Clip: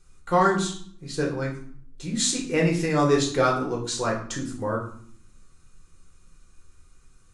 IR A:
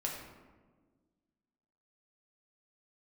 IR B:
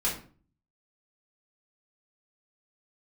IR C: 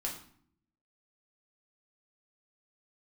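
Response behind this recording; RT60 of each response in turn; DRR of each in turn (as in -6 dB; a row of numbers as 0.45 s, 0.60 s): C; 1.5 s, 0.40 s, 0.60 s; -2.0 dB, -7.5 dB, -2.0 dB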